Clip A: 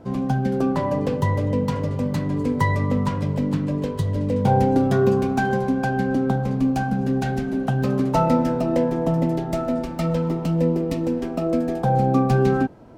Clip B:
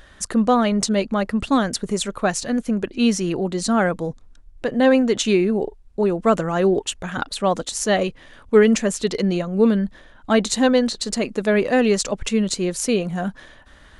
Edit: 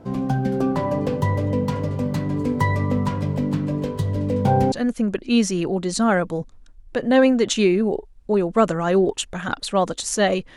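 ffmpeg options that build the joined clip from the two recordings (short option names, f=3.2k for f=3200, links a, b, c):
-filter_complex "[0:a]apad=whole_dur=10.56,atrim=end=10.56,atrim=end=4.722[a];[1:a]atrim=start=2.408:end=8.25[b];[a][b]acrossfade=d=0.004:c1=hsin:c2=hsin"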